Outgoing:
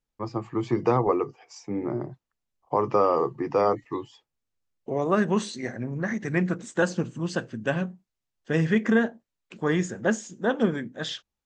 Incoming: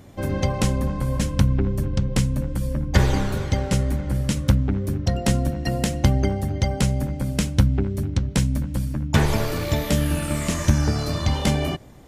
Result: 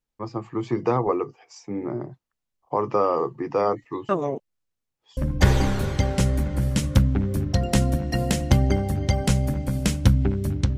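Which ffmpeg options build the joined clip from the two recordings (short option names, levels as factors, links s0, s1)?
-filter_complex "[0:a]apad=whole_dur=10.77,atrim=end=10.77,asplit=2[s0][s1];[s0]atrim=end=4.092[s2];[s1]atrim=start=4.088:end=5.172,asetpts=PTS-STARTPTS,areverse[s3];[1:a]atrim=start=2.698:end=8.3[s4];[s2][s3]acrossfade=d=0.004:c1=hsin:c2=hsin[s5];[s5][s4]acrossfade=d=0.004:c1=hsin:c2=hsin"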